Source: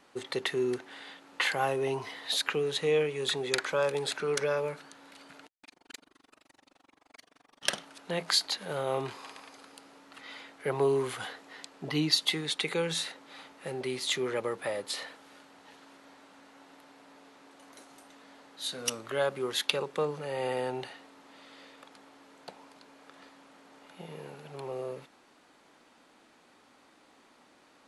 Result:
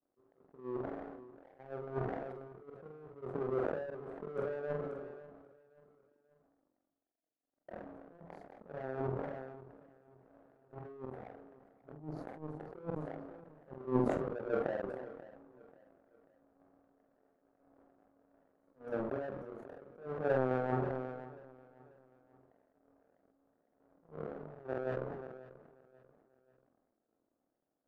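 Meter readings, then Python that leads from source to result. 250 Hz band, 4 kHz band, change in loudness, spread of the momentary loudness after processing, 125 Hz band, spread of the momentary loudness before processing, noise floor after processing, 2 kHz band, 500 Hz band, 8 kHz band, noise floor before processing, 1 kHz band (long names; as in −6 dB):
−3.0 dB, below −35 dB, −8.5 dB, 20 LU, −2.5 dB, 19 LU, −85 dBFS, −14.5 dB, −6.5 dB, below −35 dB, −63 dBFS, −6.5 dB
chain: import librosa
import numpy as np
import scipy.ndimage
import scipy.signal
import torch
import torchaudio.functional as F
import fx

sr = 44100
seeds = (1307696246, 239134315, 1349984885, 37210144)

p1 = scipy.signal.sosfilt(scipy.signal.ellip(4, 1.0, 50, 700.0, 'lowpass', fs=sr, output='sos'), x)
p2 = fx.over_compress(p1, sr, threshold_db=-37.0, ratio=-1.0)
p3 = scipy.signal.sosfilt(scipy.signal.butter(2, 110.0, 'highpass', fs=sr, output='sos'), p2)
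p4 = fx.chorus_voices(p3, sr, voices=6, hz=0.28, base_ms=28, depth_ms=4.7, mix_pct=35)
p5 = fx.auto_swell(p4, sr, attack_ms=220.0)
p6 = fx.hum_notches(p5, sr, base_hz=60, count=7)
p7 = fx.power_curve(p6, sr, exponent=2.0)
p8 = fx.doubler(p7, sr, ms=46.0, db=-9)
p9 = p8 + fx.echo_feedback(p8, sr, ms=537, feedback_pct=44, wet_db=-19.5, dry=0)
p10 = fx.sustainer(p9, sr, db_per_s=33.0)
y = p10 * 10.0 ** (10.5 / 20.0)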